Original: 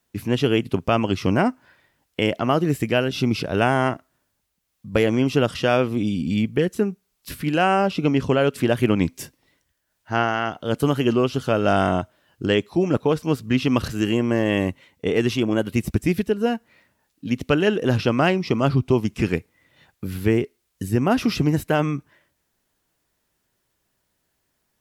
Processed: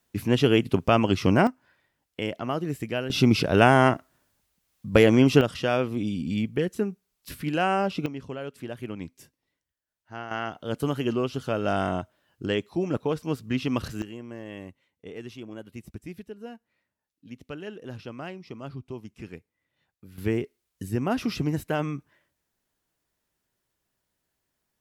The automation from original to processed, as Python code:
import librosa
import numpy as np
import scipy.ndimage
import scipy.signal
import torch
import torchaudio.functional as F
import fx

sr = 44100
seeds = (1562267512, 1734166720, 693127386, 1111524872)

y = fx.gain(x, sr, db=fx.steps((0.0, -0.5), (1.47, -9.0), (3.1, 2.0), (5.41, -5.5), (8.06, -16.5), (10.31, -7.0), (14.02, -19.0), (20.18, -7.0)))